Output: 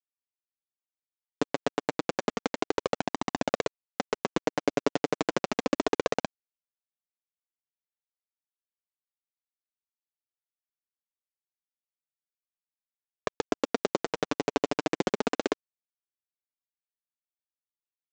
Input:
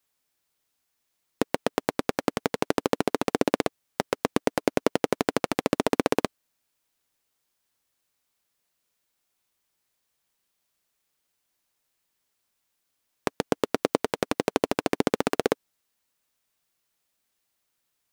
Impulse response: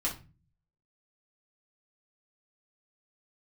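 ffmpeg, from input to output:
-af "equalizer=frequency=71:width_type=o:width=1.2:gain=-7.5,aresample=16000,acrusher=bits=5:mix=0:aa=0.000001,aresample=44100,flanger=delay=1:depth=6.1:regen=1:speed=0.31:shape=sinusoidal"

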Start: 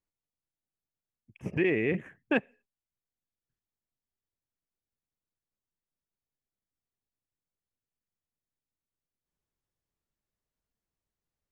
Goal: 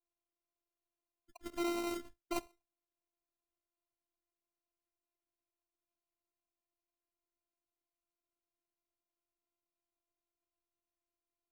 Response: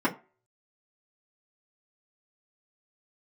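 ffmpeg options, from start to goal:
-af "afftdn=noise_reduction=15:noise_floor=-47,areverse,acompressor=threshold=-34dB:ratio=12,areverse,aexciter=amount=1.7:drive=8.2:freq=2400,acrusher=samples=26:mix=1:aa=0.000001,afftfilt=real='hypot(re,im)*cos(PI*b)':imag='0':win_size=512:overlap=0.75,volume=3.5dB"

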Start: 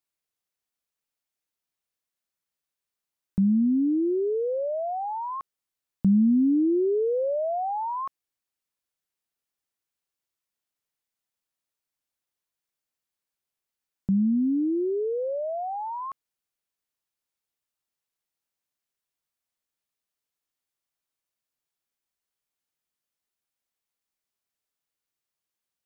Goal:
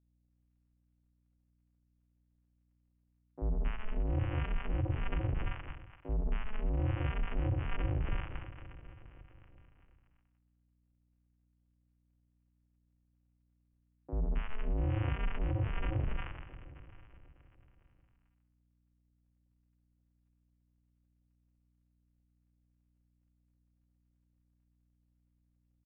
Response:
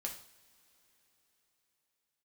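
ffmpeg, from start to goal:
-filter_complex "[1:a]atrim=start_sample=2205[link_01];[0:a][link_01]afir=irnorm=-1:irlink=0,aresample=11025,acrusher=samples=42:mix=1:aa=0.000001,aresample=44100,aresample=8000,aresample=44100,asetrate=36028,aresample=44100,atempo=1.22405,areverse,acompressor=threshold=-36dB:ratio=20,areverse,acrossover=split=220|820[link_02][link_03][link_04];[link_02]adelay=40[link_05];[link_04]adelay=270[link_06];[link_05][link_03][link_06]amix=inputs=3:normalize=0,aeval=exprs='val(0)+0.0001*(sin(2*PI*60*n/s)+sin(2*PI*2*60*n/s)/2+sin(2*PI*3*60*n/s)/3+sin(2*PI*4*60*n/s)/4+sin(2*PI*5*60*n/s)/5)':channel_layout=same,volume=7.5dB"

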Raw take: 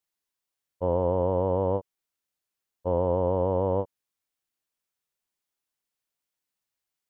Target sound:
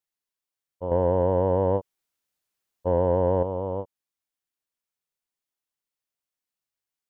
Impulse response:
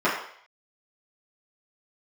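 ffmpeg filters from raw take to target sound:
-filter_complex "[0:a]asettb=1/sr,asplit=3[link_01][link_02][link_03];[link_01]atrim=end=0.914[link_04];[link_02]atrim=start=0.91:end=3.43,asetpts=PTS-STARTPTS,afade=type=in:duration=0.004:curve=qsin,afade=type=out:start_time=2.516:duration=0.004:curve=qsin,acontrast=89[link_05];[link_03]atrim=start=3.426[link_06];[link_04][link_05]acrossfade=duration=0.004:curve1=hsin:curve2=qsin[link_07];[link_07][link_06]acrossfade=duration=0.004:curve1=qsin:curve2=hsin,volume=-4dB"

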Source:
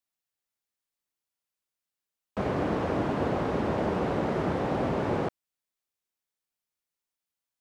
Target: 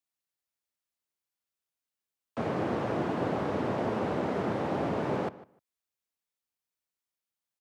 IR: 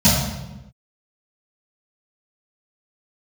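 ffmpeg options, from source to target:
-filter_complex "[0:a]afreqshift=31,asplit=2[link_01][link_02];[link_02]adelay=151,lowpass=frequency=3000:poles=1,volume=-17.5dB,asplit=2[link_03][link_04];[link_04]adelay=151,lowpass=frequency=3000:poles=1,volume=0.16[link_05];[link_03][link_05]amix=inputs=2:normalize=0[link_06];[link_01][link_06]amix=inputs=2:normalize=0,volume=-2.5dB"

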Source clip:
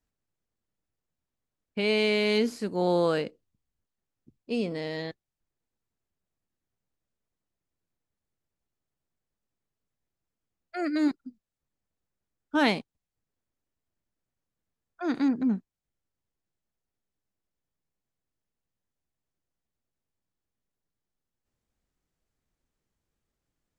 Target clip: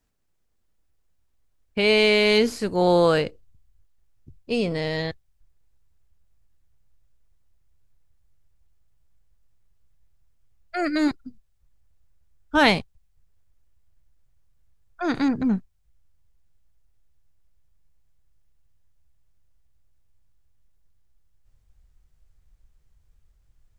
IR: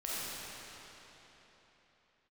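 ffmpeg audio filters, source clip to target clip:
-af "asubboost=boost=12:cutoff=72,volume=8dB"

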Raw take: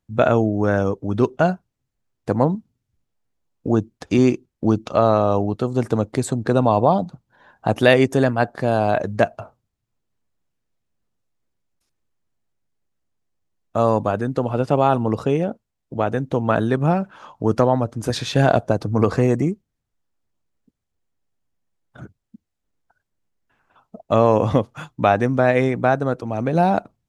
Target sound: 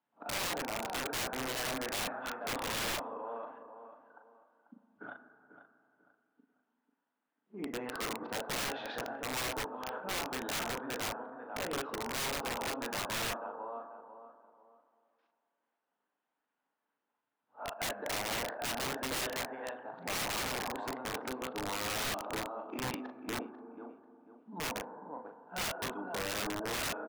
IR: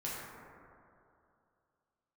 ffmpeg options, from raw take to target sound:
-filter_complex "[0:a]areverse,acompressor=threshold=-41dB:ratio=2,highpass=frequency=290:width=0.5412,highpass=frequency=290:width=1.3066,equalizer=frequency=370:width_type=q:width=4:gain=-8,equalizer=frequency=550:width_type=q:width=4:gain=-3,equalizer=frequency=900:width_type=q:width=4:gain=7,equalizer=frequency=1500:width_type=q:width=4:gain=5,equalizer=frequency=2300:width_type=q:width=4:gain=-4,lowpass=frequency=3000:width=0.5412,lowpass=frequency=3000:width=1.3066,asplit=2[link_01][link_02];[link_02]adelay=39,volume=-6dB[link_03];[link_01][link_03]amix=inputs=2:normalize=0,asplit=2[link_04][link_05];[link_05]adelay=492,lowpass=frequency=2200:poles=1,volume=-11dB,asplit=2[link_06][link_07];[link_07]adelay=492,lowpass=frequency=2200:poles=1,volume=0.3,asplit=2[link_08][link_09];[link_09]adelay=492,lowpass=frequency=2200:poles=1,volume=0.3[link_10];[link_04][link_06][link_08][link_10]amix=inputs=4:normalize=0,asplit=2[link_11][link_12];[1:a]atrim=start_sample=2205,highshelf=frequency=3000:gain=-7,adelay=7[link_13];[link_12][link_13]afir=irnorm=-1:irlink=0,volume=-12dB[link_14];[link_11][link_14]amix=inputs=2:normalize=0,aeval=exprs='(mod(31.6*val(0)+1,2)-1)/31.6':channel_layout=same"

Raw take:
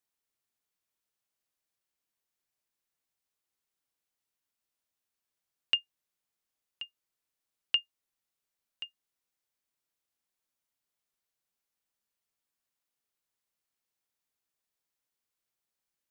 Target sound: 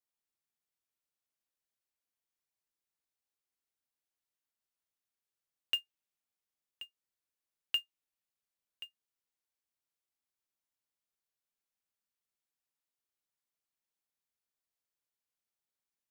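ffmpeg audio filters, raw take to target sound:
ffmpeg -i in.wav -af "adynamicequalizer=threshold=0.01:dfrequency=2700:dqfactor=3:tfrequency=2700:tqfactor=3:attack=5:release=100:ratio=0.375:range=3:mode=boostabove:tftype=bell,acrusher=bits=4:mode=log:mix=0:aa=0.000001,volume=-6.5dB" out.wav

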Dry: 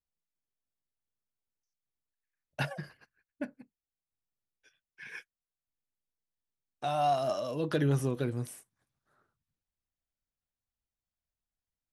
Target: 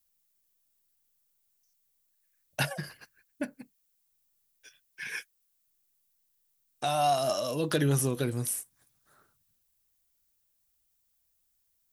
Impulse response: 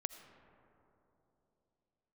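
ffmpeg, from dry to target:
-filter_complex "[0:a]aemphasis=mode=production:type=75kf,asplit=2[link_01][link_02];[link_02]acompressor=threshold=-41dB:ratio=6,volume=0dB[link_03];[link_01][link_03]amix=inputs=2:normalize=0"

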